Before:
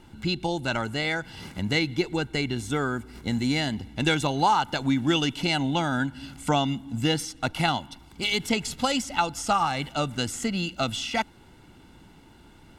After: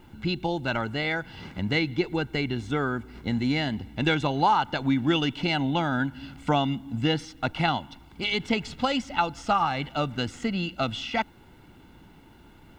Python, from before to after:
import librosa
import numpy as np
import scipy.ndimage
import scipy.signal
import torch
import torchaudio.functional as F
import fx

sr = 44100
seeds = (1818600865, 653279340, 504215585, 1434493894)

y = scipy.signal.sosfilt(scipy.signal.butter(2, 3600.0, 'lowpass', fs=sr, output='sos'), x)
y = fx.quant_dither(y, sr, seeds[0], bits=12, dither='triangular')